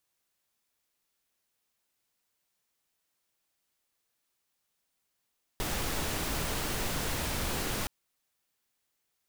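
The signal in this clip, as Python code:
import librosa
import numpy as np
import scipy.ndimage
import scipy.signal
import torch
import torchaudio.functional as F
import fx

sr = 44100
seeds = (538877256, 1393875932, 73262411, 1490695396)

y = fx.noise_colour(sr, seeds[0], length_s=2.27, colour='pink', level_db=-32.5)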